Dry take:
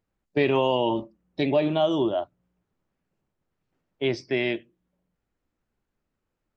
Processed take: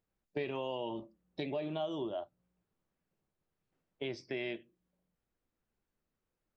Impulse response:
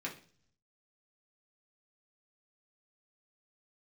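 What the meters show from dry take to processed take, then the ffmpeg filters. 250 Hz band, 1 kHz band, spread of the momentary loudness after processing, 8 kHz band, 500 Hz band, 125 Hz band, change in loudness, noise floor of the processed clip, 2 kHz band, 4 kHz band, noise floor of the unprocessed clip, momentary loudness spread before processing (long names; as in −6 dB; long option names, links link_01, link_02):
−14.5 dB, −15.0 dB, 9 LU, can't be measured, −14.0 dB, −14.5 dB, −14.5 dB, below −85 dBFS, −13.5 dB, −13.5 dB, −82 dBFS, 9 LU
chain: -filter_complex "[0:a]acompressor=threshold=-31dB:ratio=3,asplit=2[link_01][link_02];[1:a]atrim=start_sample=2205,atrim=end_sample=3969,asetrate=66150,aresample=44100[link_03];[link_02][link_03]afir=irnorm=-1:irlink=0,volume=-11dB[link_04];[link_01][link_04]amix=inputs=2:normalize=0,volume=-6.5dB"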